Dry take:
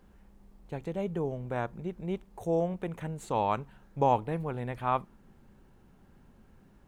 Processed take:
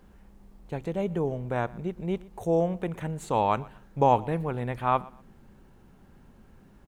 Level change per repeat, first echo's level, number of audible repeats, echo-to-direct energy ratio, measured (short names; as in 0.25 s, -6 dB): -12.0 dB, -22.0 dB, 2, -21.5 dB